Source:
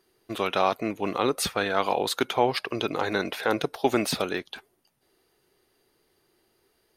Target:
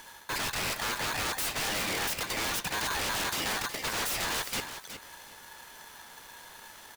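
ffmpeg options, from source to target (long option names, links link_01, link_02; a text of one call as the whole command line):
ffmpeg -i in.wav -af "areverse,acompressor=threshold=-35dB:ratio=6,areverse,aeval=exprs='0.0596*sin(PI/2*8.91*val(0)/0.0596)':channel_layout=same,aecho=1:1:367|734|1101:0.316|0.0569|0.0102,aeval=exprs='val(0)*sgn(sin(2*PI*1300*n/s))':channel_layout=same,volume=-4dB" out.wav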